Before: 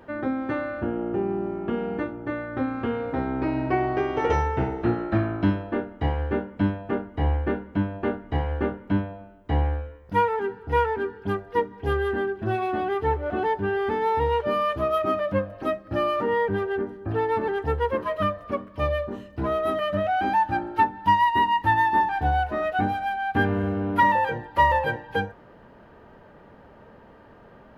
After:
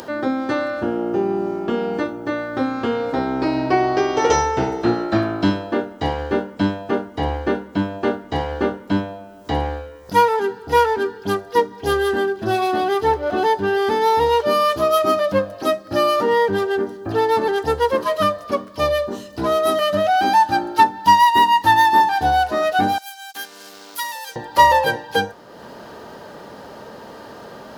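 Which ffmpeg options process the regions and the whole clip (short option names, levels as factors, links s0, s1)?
-filter_complex "[0:a]asettb=1/sr,asplit=3[s0][s1][s2];[s0]atrim=end=22.984[s3];[s1]atrim=start=22.98:end=24.36,asetpts=PTS-STARTPTS,afade=t=in:d=0.004:c=qsin,afade=t=out:st=1.376:d=0.004:c=qsin,highpass=160,aderivative,aeval=exprs='sgn(val(0))*max(abs(val(0))-0.00141,0)':c=same[s4];[s2]atrim=start=24.356[s5];[s3][s4]acrossfade=d=0.004:c1=hsin:c2=qsin[s6];[s6][s5]acrossfade=d=0.004:c1=qsin:c2=hsin,highpass=f=300:p=1,highshelf=f=3400:t=q:w=1.5:g=12,acompressor=mode=upward:threshold=0.0126:ratio=2.5,volume=2.66"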